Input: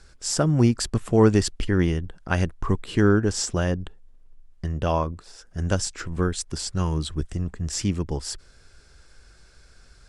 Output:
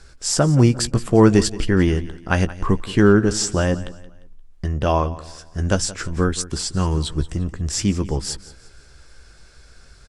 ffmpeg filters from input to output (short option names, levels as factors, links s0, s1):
-filter_complex "[0:a]asplit=2[s0][s1];[s1]adelay=15,volume=0.299[s2];[s0][s2]amix=inputs=2:normalize=0,aecho=1:1:175|350|525:0.133|0.0493|0.0183,volume=1.68"